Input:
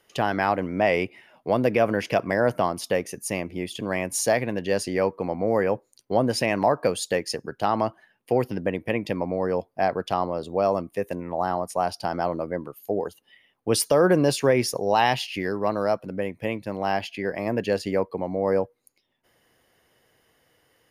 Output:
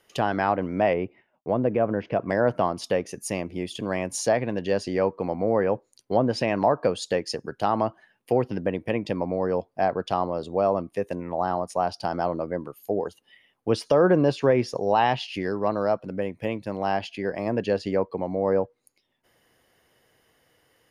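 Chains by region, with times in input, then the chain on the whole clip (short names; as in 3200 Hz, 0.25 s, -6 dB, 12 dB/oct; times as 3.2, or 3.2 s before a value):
0.93–2.28 expander -47 dBFS + tape spacing loss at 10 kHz 38 dB
whole clip: treble ducked by the level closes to 2900 Hz, closed at -17.5 dBFS; dynamic EQ 2100 Hz, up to -5 dB, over -44 dBFS, Q 2.1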